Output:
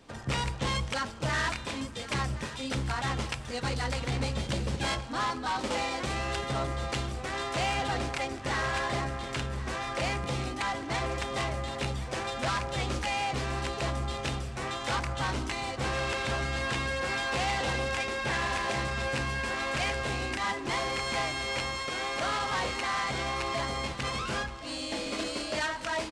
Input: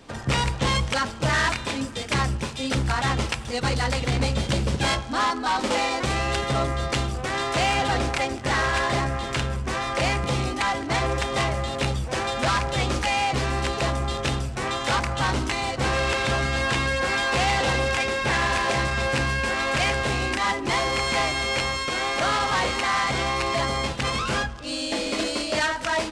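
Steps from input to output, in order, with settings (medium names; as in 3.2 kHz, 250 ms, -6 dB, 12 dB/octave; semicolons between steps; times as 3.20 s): feedback delay 1072 ms, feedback 51%, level -15 dB; trim -7.5 dB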